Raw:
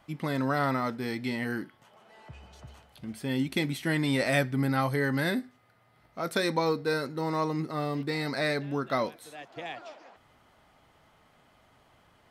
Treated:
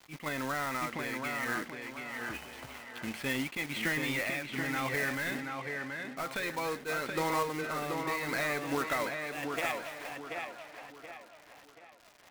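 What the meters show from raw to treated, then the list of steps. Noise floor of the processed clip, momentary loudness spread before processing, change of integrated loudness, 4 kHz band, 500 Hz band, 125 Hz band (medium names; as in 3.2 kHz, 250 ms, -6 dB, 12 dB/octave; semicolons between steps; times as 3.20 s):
-57 dBFS, 15 LU, -4.5 dB, -3.0 dB, -5.5 dB, -11.0 dB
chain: peaking EQ 2.4 kHz +11.5 dB 1.2 oct; compression 10:1, threshold -32 dBFS, peak gain reduction 17.5 dB; overdrive pedal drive 15 dB, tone 1.5 kHz, clips at -19.5 dBFS; crossover distortion -50.5 dBFS; random-step tremolo; companded quantiser 4-bit; on a send: tape echo 730 ms, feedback 42%, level -3 dB, low-pass 3.3 kHz; on the sum: attacks held to a fixed rise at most 290 dB/s; trim +2 dB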